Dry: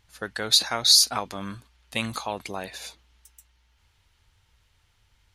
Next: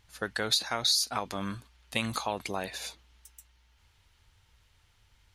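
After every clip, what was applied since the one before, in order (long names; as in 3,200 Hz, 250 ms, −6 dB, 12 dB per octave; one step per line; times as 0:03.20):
downward compressor 4 to 1, threshold −25 dBFS, peak gain reduction 11 dB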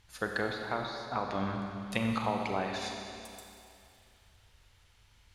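treble cut that deepens with the level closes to 1,200 Hz, closed at −27 dBFS
four-comb reverb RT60 2.6 s, combs from 31 ms, DRR 2 dB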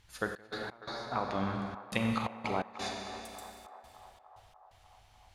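gate pattern "xx.x.xxxxx." 86 BPM −24 dB
feedback echo with a band-pass in the loop 298 ms, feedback 78%, band-pass 870 Hz, level −12 dB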